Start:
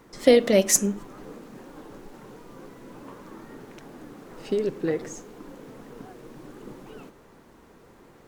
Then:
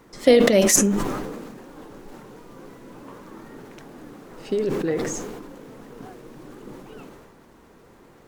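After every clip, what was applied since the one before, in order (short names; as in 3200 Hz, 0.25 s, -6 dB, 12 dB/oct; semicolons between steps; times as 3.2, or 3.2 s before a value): sustainer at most 33 dB/s; gain +1 dB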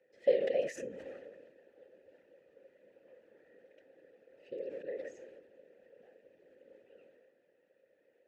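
whisperiser; vowel filter e; gain -8.5 dB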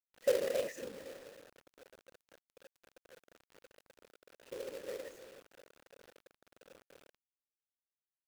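companded quantiser 4-bit; gain -3 dB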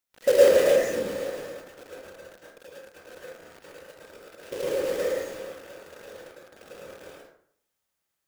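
plate-style reverb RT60 0.65 s, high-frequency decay 0.5×, pre-delay 95 ms, DRR -5.5 dB; in parallel at -5 dB: soft clip -29 dBFS, distortion -6 dB; on the sum: gain +6 dB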